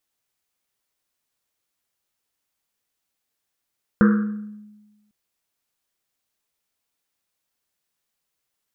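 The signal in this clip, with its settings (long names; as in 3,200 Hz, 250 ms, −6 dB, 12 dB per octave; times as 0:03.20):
drum after Risset, pitch 210 Hz, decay 1.25 s, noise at 1,400 Hz, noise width 540 Hz, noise 15%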